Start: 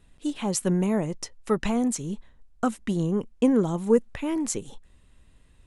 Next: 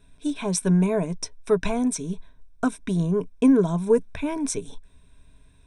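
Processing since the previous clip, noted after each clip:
EQ curve with evenly spaced ripples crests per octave 1.6, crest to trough 12 dB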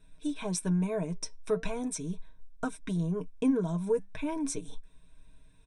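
comb filter 6.4 ms, depth 55%
downward compressor 1.5 to 1, threshold −27 dBFS, peak gain reduction 6 dB
flanger 0.38 Hz, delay 1 ms, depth 4.4 ms, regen +88%
level −1.5 dB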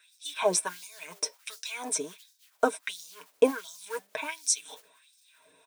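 noise that follows the level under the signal 31 dB
auto-filter high-pass sine 1.4 Hz 450–5,400 Hz
level +8 dB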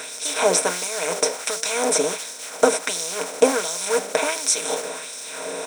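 compressor on every frequency bin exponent 0.4
level +3.5 dB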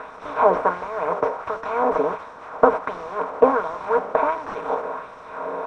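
linear delta modulator 64 kbit/s, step −30 dBFS
low-pass with resonance 1,100 Hz, resonance Q 3.4
level −1 dB

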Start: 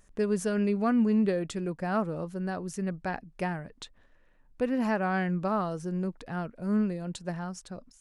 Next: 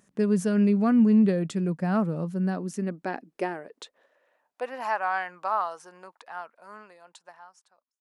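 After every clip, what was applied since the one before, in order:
fade-out on the ending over 2.36 s
high-pass filter sweep 170 Hz → 910 Hz, 0:02.28–0:04.94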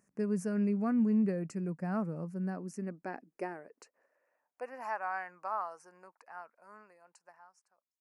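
Butterworth band-reject 3,500 Hz, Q 1.6
level −9 dB

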